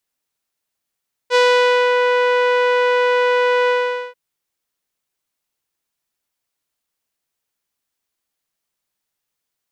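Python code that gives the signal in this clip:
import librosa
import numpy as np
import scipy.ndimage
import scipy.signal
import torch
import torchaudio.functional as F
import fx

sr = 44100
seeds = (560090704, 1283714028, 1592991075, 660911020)

y = fx.sub_voice(sr, note=71, wave='saw', cutoff_hz=2400.0, q=0.97, env_oct=1.0, env_s=0.67, attack_ms=51.0, decay_s=0.53, sustain_db=-3.0, release_s=0.45, note_s=2.39, slope=12)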